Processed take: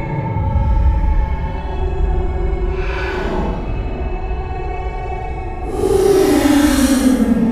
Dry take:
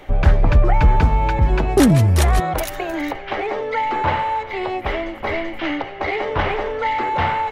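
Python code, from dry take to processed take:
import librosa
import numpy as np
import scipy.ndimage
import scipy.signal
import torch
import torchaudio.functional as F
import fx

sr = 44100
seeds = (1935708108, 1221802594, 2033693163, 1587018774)

y = fx.paulstretch(x, sr, seeds[0], factor=15.0, window_s=0.05, from_s=1.38)
y = y * 10.0 ** (-2.0 / 20.0)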